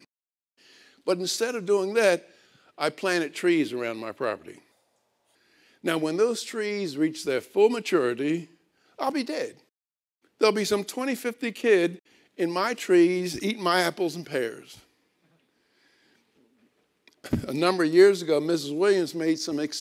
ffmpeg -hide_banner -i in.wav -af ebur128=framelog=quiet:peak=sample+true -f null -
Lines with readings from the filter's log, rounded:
Integrated loudness:
  I:         -25.3 LUFS
  Threshold: -36.7 LUFS
Loudness range:
  LRA:         6.0 LU
  Threshold: -47.1 LUFS
  LRA low:   -30.5 LUFS
  LRA high:  -24.5 LUFS
Sample peak:
  Peak:       -6.2 dBFS
True peak:
  Peak:       -6.2 dBFS